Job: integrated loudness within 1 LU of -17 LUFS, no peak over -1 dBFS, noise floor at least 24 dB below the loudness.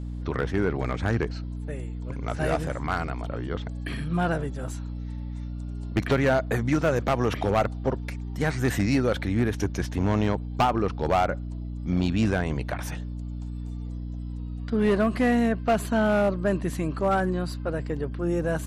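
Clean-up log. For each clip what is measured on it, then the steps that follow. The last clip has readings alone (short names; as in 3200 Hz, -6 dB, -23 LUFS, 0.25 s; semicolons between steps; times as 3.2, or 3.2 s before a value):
clipped 1.0%; flat tops at -16.0 dBFS; hum 60 Hz; harmonics up to 300 Hz; hum level -31 dBFS; loudness -27.0 LUFS; peak -16.0 dBFS; loudness target -17.0 LUFS
-> clip repair -16 dBFS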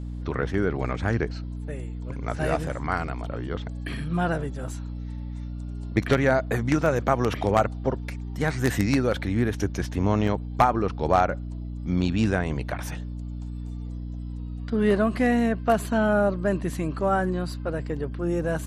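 clipped 0.0%; hum 60 Hz; harmonics up to 300 Hz; hum level -31 dBFS
-> de-hum 60 Hz, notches 5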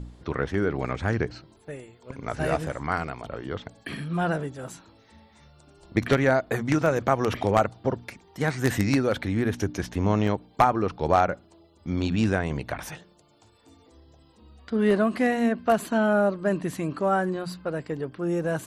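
hum none; loudness -26.0 LUFS; peak -6.0 dBFS; loudness target -17.0 LUFS
-> gain +9 dB; limiter -1 dBFS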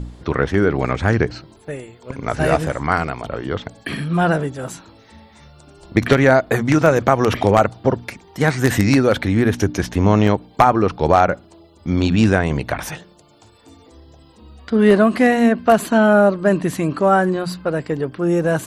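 loudness -17.5 LUFS; peak -1.0 dBFS; noise floor -49 dBFS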